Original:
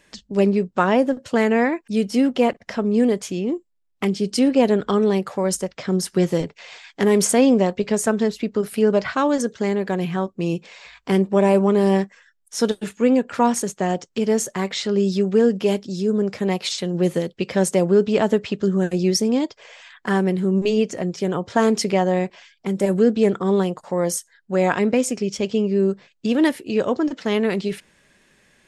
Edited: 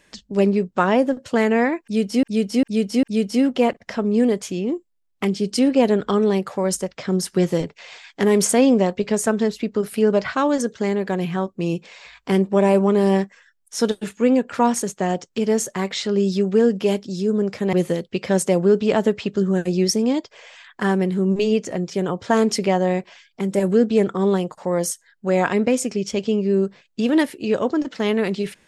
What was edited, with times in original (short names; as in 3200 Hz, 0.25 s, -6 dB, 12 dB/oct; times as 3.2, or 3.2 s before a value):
1.83–2.23 loop, 4 plays
16.53–16.99 cut